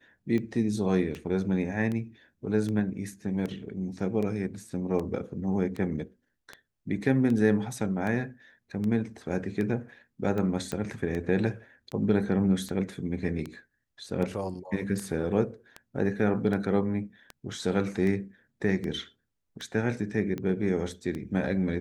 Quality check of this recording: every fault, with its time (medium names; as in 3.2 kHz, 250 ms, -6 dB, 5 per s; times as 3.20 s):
tick 78 rpm -22 dBFS
10.72 s: pop -18 dBFS